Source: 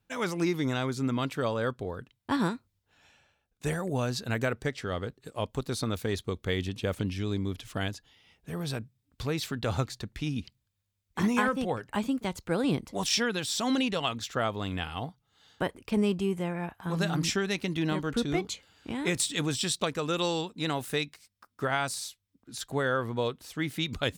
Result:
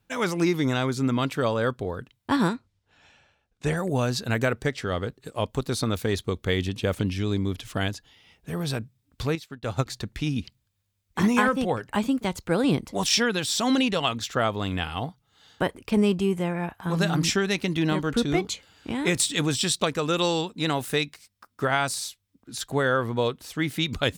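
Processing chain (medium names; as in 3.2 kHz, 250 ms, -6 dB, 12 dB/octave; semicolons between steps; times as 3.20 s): 2.53–3.77 s: Bessel low-pass 6.2 kHz, order 2; 9.35–9.86 s: upward expansion 2.5:1, over -43 dBFS; trim +5 dB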